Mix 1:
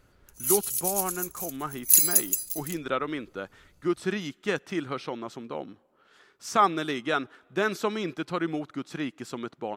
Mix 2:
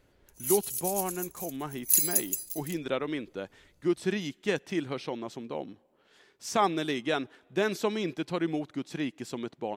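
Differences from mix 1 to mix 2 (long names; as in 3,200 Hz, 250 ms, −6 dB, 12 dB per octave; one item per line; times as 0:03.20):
speech: add parametric band 1,300 Hz −10 dB 0.51 octaves
background −5.0 dB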